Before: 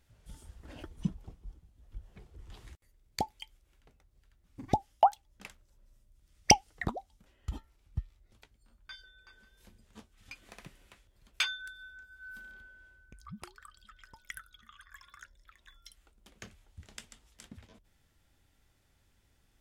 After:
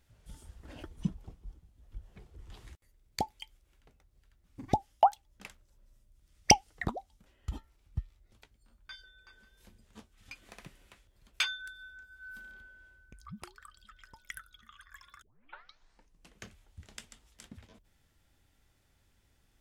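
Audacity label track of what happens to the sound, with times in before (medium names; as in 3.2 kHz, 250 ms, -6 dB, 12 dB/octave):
15.220000	15.220000	tape start 1.21 s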